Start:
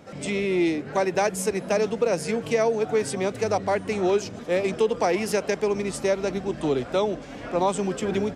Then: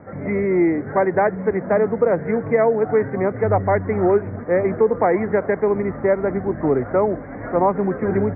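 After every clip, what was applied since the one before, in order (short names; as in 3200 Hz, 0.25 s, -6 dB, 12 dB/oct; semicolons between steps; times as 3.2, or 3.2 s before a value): steep low-pass 2100 Hz 96 dB/oct; bell 98 Hz +12.5 dB 0.22 oct; gain +5.5 dB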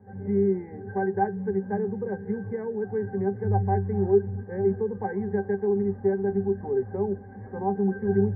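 octave resonator G, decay 0.13 s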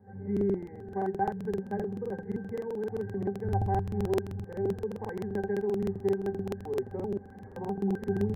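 de-hum 59.91 Hz, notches 2; pre-echo 51 ms -23 dB; crackling interface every 0.13 s, samples 2048, repeat, from 0.32; gain -5 dB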